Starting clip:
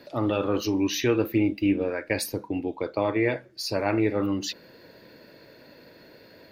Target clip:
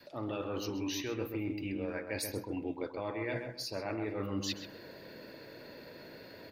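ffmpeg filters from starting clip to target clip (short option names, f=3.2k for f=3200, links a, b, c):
-filter_complex "[0:a]adynamicequalizer=threshold=0.0178:dfrequency=390:dqfactor=0.87:tfrequency=390:tqfactor=0.87:attack=5:release=100:ratio=0.375:range=2:mode=cutabove:tftype=bell,bandreject=f=60:t=h:w=6,bandreject=f=120:t=h:w=6,bandreject=f=180:t=h:w=6,bandreject=f=240:t=h:w=6,bandreject=f=300:t=h:w=6,areverse,acompressor=threshold=-35dB:ratio=6,areverse,asplit=2[a][b];[b]adelay=131,lowpass=f=1.9k:p=1,volume=-5dB,asplit=2[c][d];[d]adelay=131,lowpass=f=1.9k:p=1,volume=0.3,asplit=2[e][f];[f]adelay=131,lowpass=f=1.9k:p=1,volume=0.3,asplit=2[g][h];[h]adelay=131,lowpass=f=1.9k:p=1,volume=0.3[i];[a][c][e][g][i]amix=inputs=5:normalize=0"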